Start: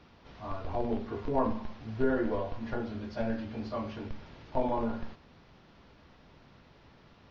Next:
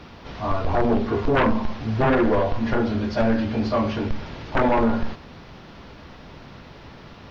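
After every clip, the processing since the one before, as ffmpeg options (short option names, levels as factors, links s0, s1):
-af "aeval=exprs='0.188*sin(PI/2*3.55*val(0)/0.188)':c=same"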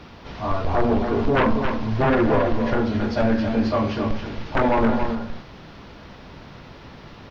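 -af "aecho=1:1:273:0.447"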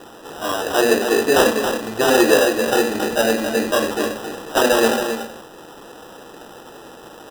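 -af "highpass=330,equalizer=f=330:t=q:w=4:g=6,equalizer=f=480:t=q:w=4:g=8,equalizer=f=940:t=q:w=4:g=-10,equalizer=f=1400:t=q:w=4:g=9,equalizer=f=2100:t=q:w=4:g=-6,equalizer=f=3300:t=q:w=4:g=6,lowpass=f=4900:w=0.5412,lowpass=f=4900:w=1.3066,acrusher=samples=20:mix=1:aa=0.000001,volume=1.41"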